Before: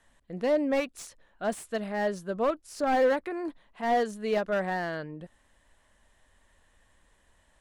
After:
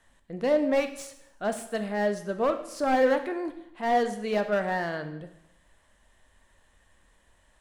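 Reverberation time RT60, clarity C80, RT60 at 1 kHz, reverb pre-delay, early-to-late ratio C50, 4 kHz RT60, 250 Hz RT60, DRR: 0.85 s, 14.0 dB, 0.80 s, 7 ms, 11.0 dB, 0.75 s, 0.80 s, 8.0 dB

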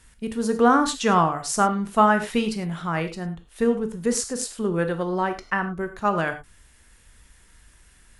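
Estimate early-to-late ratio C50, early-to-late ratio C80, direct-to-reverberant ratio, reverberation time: 11.5 dB, 15.0 dB, 7.5 dB, no single decay rate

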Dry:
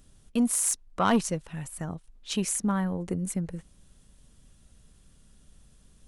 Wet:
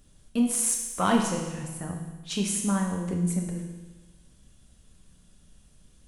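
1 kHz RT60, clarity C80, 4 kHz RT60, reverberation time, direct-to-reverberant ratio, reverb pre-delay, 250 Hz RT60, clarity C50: 1.2 s, 6.5 dB, 1.2 s, 1.2 s, 0.5 dB, 6 ms, 1.2 s, 4.0 dB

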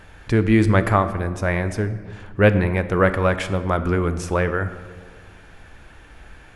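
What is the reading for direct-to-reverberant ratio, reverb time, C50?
10.5 dB, 1.7 s, 12.0 dB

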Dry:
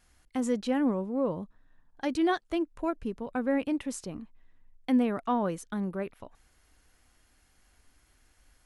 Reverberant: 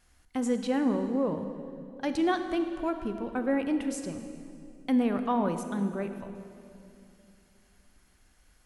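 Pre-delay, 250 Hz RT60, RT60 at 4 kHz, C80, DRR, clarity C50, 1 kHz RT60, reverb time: 21 ms, 3.3 s, 2.0 s, 9.0 dB, 7.5 dB, 8.0 dB, 2.5 s, 2.7 s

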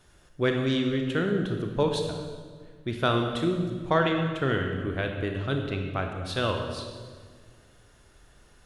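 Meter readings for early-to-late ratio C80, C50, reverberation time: 5.5 dB, 4.5 dB, 1.7 s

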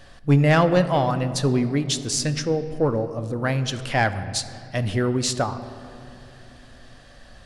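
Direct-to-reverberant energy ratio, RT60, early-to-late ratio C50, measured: 10.5 dB, 2.6 s, 12.0 dB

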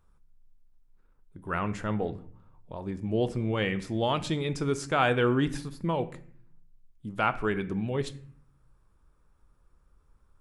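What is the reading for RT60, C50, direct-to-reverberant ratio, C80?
0.50 s, 16.0 dB, 11.5 dB, 18.5 dB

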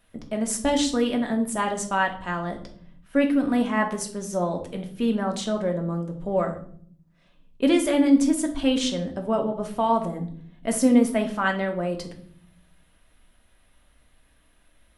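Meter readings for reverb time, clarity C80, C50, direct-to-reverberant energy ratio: 0.55 s, 15.5 dB, 10.5 dB, 3.0 dB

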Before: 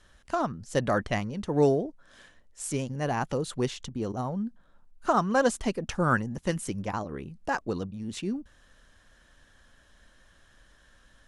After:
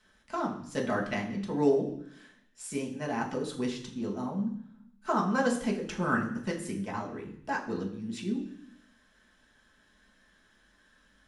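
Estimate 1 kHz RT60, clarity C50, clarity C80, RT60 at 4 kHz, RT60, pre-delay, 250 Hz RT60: 0.65 s, 8.5 dB, 11.5 dB, 0.85 s, 0.65 s, 3 ms, 0.95 s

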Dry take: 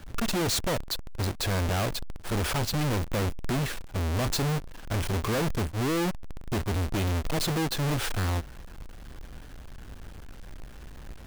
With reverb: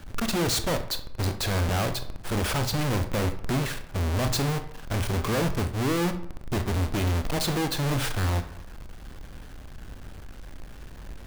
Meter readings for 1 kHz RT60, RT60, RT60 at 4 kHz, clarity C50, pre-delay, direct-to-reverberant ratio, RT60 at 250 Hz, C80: 0.70 s, 0.70 s, 0.40 s, 11.5 dB, 21 ms, 8.5 dB, 0.75 s, 14.5 dB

